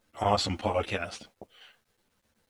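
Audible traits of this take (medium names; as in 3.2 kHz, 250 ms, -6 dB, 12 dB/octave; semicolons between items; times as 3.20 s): chopped level 8.1 Hz, depth 65%, duty 85%; a quantiser's noise floor 12-bit, dither none; a shimmering, thickened sound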